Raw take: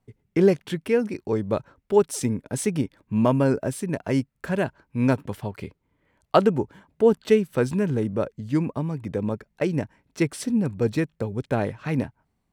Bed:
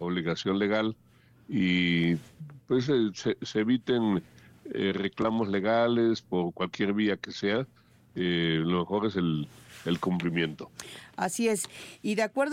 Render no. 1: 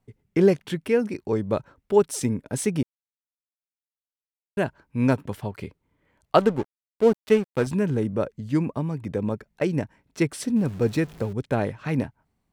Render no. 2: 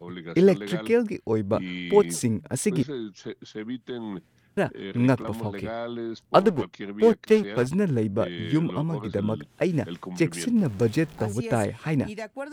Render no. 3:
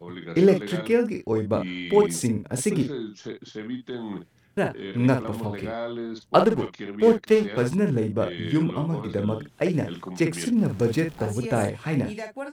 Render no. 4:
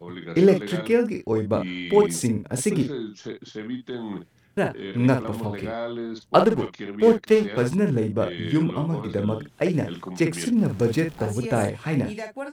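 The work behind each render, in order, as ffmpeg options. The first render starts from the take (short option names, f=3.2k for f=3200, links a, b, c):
-filter_complex "[0:a]asettb=1/sr,asplit=3[a][b][c];[a]atrim=end=6.384[d];[b]atrim=start=6.38:end=7.67,asetpts=PTS-STARTPTS,afade=t=in:d=0.004:c=qsin,afade=t=out:st=1.286:d=0.004:c=qsin,aeval=exprs='sgn(val(0))*max(abs(val(0))-0.0224,0)':c=same[e];[c]atrim=start=7.666[f];[d][e]acrossfade=d=0.004:c1=hsin:c2=qsin[g];[g][f]acrossfade=d=0.004:c1=qsin:c2=hsin,asettb=1/sr,asplit=3[h][i][j];[h]atrim=end=10.564[k];[i]atrim=start=10.56:end=11.33,asetpts=PTS-STARTPTS,afade=t=in:d=0.004:c=qsin,afade=t=out:st=0.766:d=0.004:c=qsin,aeval=exprs='val(0)+0.5*0.0106*sgn(val(0))':c=same[l];[j]atrim=start=11.326[m];[k][l]acrossfade=d=0.004:c1=hsin:c2=qsin[n];[n][m]acrossfade=d=0.004:c1=qsin:c2=hsin,asplit=3[o][p][q];[o]atrim=end=2.83,asetpts=PTS-STARTPTS,afade=t=out:st=2.826:d=0.004:c=hsin[r];[p]atrim=start=2.83:end=4.57,asetpts=PTS-STARTPTS,volume=0[s];[q]atrim=start=4.57,asetpts=PTS-STARTPTS,afade=t=in:d=0.004:c=hsin[t];[r][s][t]concat=n=3:v=0:a=1"
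-filter_complex "[1:a]volume=-8dB[a];[0:a][a]amix=inputs=2:normalize=0"
-filter_complex "[0:a]asplit=2[a][b];[b]adelay=48,volume=-7dB[c];[a][c]amix=inputs=2:normalize=0"
-af "volume=1dB"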